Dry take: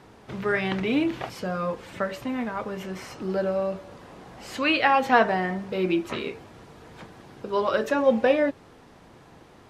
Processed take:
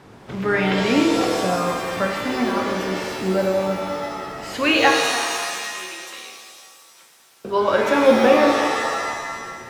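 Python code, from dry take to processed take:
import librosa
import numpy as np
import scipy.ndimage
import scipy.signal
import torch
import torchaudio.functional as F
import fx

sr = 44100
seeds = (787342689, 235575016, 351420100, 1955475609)

y = fx.differentiator(x, sr, at=(4.9, 7.45))
y = fx.rev_shimmer(y, sr, seeds[0], rt60_s=1.8, semitones=7, shimmer_db=-2, drr_db=2.0)
y = y * 10.0 ** (3.5 / 20.0)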